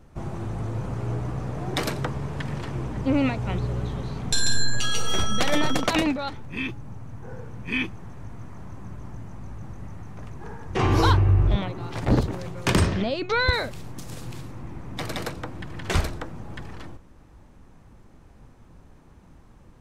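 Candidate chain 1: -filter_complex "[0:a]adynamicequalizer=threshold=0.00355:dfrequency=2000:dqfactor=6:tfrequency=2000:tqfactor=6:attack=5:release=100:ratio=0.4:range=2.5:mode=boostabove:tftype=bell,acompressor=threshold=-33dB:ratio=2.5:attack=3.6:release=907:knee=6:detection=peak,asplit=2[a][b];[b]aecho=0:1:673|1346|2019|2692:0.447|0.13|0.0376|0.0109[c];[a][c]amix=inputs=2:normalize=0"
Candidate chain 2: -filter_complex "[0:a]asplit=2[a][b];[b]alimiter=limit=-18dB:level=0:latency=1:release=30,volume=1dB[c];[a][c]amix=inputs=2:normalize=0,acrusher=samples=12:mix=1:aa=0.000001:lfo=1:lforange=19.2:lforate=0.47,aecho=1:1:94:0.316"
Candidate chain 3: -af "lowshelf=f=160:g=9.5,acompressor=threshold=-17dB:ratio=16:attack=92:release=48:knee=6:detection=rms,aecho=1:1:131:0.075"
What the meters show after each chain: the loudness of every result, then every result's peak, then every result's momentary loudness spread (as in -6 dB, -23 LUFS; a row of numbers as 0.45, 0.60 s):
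-36.5, -21.5, -25.5 LUFS; -17.5, -5.5, -6.0 dBFS; 17, 15, 14 LU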